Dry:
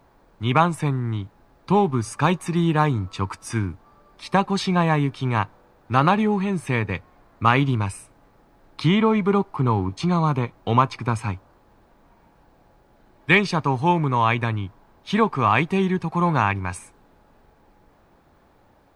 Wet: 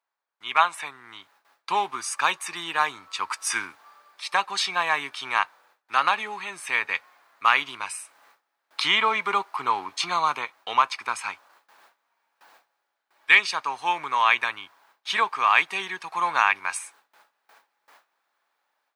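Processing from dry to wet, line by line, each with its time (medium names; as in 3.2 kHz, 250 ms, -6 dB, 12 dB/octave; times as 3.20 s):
0.58–0.85 s: time-frequency box 520–4300 Hz +6 dB
whole clip: gate with hold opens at -45 dBFS; level rider gain up to 11 dB; high-pass 1.3 kHz 12 dB/octave; trim +1.5 dB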